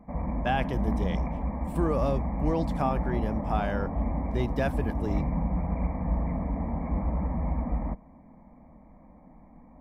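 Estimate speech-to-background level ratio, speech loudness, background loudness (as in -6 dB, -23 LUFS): -1.0 dB, -32.0 LUFS, -31.0 LUFS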